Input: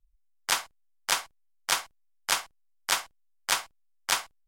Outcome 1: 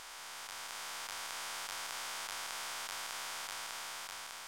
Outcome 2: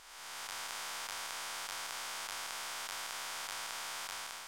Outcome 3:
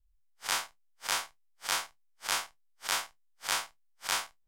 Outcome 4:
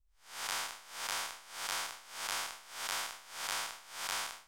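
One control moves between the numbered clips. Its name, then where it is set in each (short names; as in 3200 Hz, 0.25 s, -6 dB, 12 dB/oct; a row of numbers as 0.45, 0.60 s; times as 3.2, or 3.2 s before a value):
time blur, width: 1750, 679, 87, 271 ms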